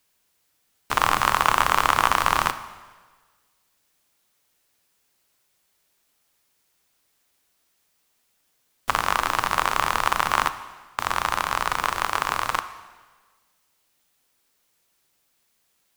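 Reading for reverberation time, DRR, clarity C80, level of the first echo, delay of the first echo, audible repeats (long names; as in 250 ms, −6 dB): 1.4 s, 11.0 dB, 14.5 dB, no echo audible, no echo audible, no echo audible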